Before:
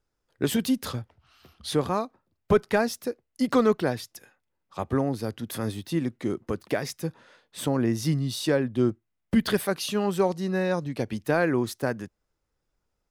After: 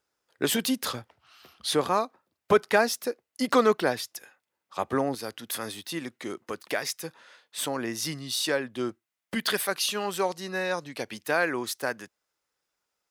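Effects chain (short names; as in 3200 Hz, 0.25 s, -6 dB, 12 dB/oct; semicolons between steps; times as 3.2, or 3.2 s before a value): HPF 630 Hz 6 dB/oct, from 5.15 s 1300 Hz; gain +5 dB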